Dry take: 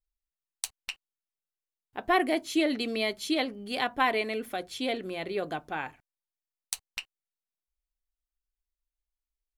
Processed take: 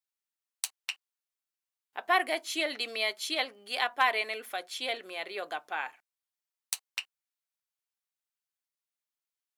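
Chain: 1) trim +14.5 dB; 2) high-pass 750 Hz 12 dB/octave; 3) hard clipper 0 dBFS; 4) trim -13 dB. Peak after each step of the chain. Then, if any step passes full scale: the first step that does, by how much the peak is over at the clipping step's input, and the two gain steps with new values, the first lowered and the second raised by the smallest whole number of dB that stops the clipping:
+5.0 dBFS, +4.5 dBFS, 0.0 dBFS, -13.0 dBFS; step 1, 4.5 dB; step 1 +9.5 dB, step 4 -8 dB

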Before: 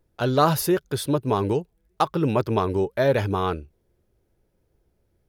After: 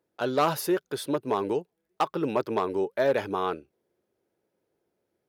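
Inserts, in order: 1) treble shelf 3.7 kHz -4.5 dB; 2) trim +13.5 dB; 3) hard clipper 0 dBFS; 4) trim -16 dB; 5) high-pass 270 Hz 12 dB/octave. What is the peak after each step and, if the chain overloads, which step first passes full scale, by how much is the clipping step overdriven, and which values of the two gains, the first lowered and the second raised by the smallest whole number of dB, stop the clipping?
-5.5 dBFS, +8.0 dBFS, 0.0 dBFS, -16.0 dBFS, -11.0 dBFS; step 2, 8.0 dB; step 2 +5.5 dB, step 4 -8 dB

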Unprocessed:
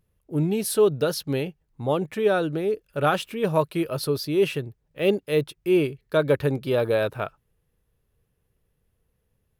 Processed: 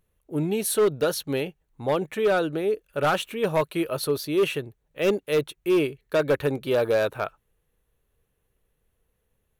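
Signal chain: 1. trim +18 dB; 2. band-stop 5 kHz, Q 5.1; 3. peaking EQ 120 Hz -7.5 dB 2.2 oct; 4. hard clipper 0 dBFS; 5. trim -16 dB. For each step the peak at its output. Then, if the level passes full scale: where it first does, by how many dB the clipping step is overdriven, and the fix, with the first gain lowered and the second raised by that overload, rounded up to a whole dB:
+9.5 dBFS, +9.5 dBFS, +9.5 dBFS, 0.0 dBFS, -16.0 dBFS; step 1, 9.5 dB; step 1 +8 dB, step 5 -6 dB

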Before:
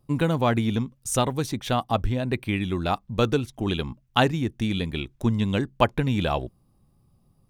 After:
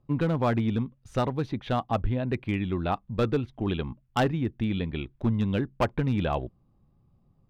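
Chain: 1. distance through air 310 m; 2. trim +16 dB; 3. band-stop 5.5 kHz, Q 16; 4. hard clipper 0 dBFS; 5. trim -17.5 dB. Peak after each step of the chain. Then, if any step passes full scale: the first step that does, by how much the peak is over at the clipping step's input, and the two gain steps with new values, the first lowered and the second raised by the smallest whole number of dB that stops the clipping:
-7.0 dBFS, +9.0 dBFS, +9.0 dBFS, 0.0 dBFS, -17.5 dBFS; step 2, 9.0 dB; step 2 +7 dB, step 5 -8.5 dB

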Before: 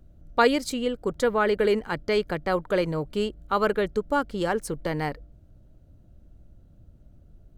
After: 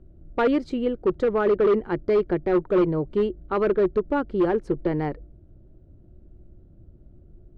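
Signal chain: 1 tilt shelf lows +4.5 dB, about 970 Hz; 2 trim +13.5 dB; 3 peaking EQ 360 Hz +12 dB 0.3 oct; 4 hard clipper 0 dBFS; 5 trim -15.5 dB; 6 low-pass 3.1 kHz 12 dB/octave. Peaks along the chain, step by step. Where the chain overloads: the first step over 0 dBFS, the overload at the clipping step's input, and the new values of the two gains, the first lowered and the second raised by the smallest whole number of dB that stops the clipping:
-5.5 dBFS, +8.0 dBFS, +9.0 dBFS, 0.0 dBFS, -15.5 dBFS, -15.0 dBFS; step 2, 9.0 dB; step 2 +4.5 dB, step 5 -6.5 dB

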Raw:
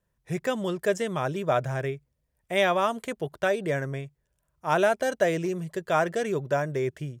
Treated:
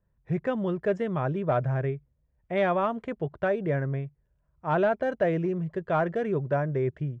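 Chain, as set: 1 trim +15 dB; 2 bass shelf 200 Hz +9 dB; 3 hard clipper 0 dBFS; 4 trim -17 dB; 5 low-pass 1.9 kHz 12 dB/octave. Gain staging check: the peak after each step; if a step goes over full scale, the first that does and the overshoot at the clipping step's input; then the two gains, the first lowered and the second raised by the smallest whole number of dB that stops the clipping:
+5.0 dBFS, +5.0 dBFS, 0.0 dBFS, -17.0 dBFS, -16.5 dBFS; step 1, 5.0 dB; step 1 +10 dB, step 4 -12 dB

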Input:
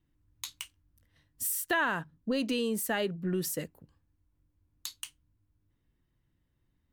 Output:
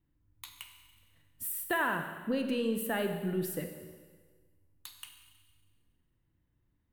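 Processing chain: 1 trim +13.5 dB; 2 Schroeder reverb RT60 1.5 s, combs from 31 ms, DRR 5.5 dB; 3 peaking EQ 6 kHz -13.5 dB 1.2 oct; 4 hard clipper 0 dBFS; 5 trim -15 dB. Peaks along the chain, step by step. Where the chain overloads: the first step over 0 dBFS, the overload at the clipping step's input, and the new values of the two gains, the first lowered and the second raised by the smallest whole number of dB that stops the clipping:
-4.5 dBFS, -3.5 dBFS, -4.5 dBFS, -4.5 dBFS, -19.5 dBFS; nothing clips

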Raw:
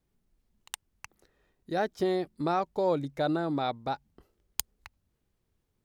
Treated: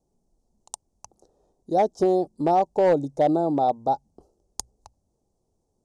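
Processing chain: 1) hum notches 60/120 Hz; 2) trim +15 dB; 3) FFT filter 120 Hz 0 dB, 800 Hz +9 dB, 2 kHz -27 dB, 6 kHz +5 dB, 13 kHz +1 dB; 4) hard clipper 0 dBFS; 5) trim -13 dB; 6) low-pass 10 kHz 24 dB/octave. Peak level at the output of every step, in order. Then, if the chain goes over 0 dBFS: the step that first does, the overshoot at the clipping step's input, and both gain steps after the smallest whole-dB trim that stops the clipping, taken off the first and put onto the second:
-11.0 dBFS, +4.0 dBFS, +8.5 dBFS, 0.0 dBFS, -13.0 dBFS, -11.5 dBFS; step 2, 8.5 dB; step 2 +6 dB, step 5 -4 dB

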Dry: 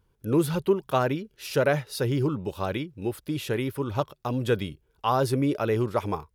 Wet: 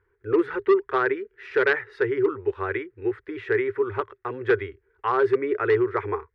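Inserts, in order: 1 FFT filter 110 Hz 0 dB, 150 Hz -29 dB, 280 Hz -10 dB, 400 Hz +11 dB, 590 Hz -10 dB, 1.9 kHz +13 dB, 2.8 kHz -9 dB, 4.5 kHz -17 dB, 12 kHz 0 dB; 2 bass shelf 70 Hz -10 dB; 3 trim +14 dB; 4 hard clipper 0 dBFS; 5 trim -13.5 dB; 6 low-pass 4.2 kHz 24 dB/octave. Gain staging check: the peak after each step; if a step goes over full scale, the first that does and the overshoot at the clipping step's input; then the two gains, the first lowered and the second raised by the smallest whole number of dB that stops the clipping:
-4.5 dBFS, -5.0 dBFS, +9.0 dBFS, 0.0 dBFS, -13.5 dBFS, -12.5 dBFS; step 3, 9.0 dB; step 3 +5 dB, step 5 -4.5 dB

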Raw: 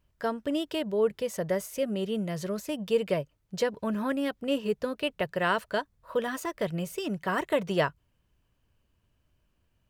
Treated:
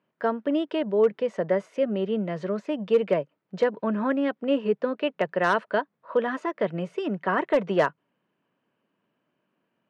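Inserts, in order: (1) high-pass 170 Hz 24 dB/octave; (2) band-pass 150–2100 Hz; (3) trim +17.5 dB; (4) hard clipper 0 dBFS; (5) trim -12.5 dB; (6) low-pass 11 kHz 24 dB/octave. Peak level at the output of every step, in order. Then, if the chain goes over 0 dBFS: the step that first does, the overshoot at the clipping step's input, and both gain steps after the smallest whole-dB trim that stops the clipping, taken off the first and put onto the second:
-11.5 dBFS, -13.5 dBFS, +4.0 dBFS, 0.0 dBFS, -12.5 dBFS, -12.0 dBFS; step 3, 4.0 dB; step 3 +13.5 dB, step 5 -8.5 dB

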